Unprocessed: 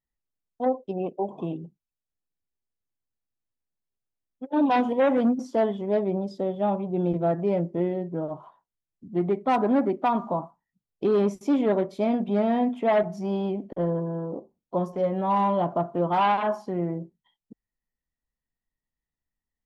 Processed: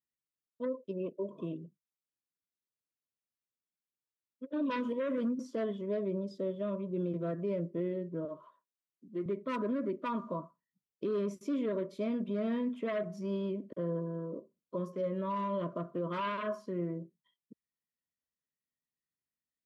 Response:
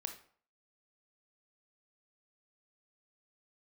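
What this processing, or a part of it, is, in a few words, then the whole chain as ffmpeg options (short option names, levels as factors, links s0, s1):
PA system with an anti-feedback notch: -filter_complex "[0:a]highpass=120,asuperstop=centerf=790:order=8:qfactor=2.5,alimiter=limit=0.106:level=0:latency=1:release=39,asettb=1/sr,asplit=3[s0][s1][s2];[s0]atrim=end=8.254[s3];[s1]atrim=start=8.25:end=9.26,asetpts=PTS-STARTPTS,afade=t=in:d=0.004:c=qsin,afade=t=out:st=1.006:d=0.004:c=qsin,highpass=230[s4];[s2]atrim=start=9.256[s5];[s3][s4]acrossfade=d=0.004:c1=hsin:c2=qsin[s6];[s6][s5]acrossfade=d=0.004:c1=qsin:c2=hsin,volume=0.447"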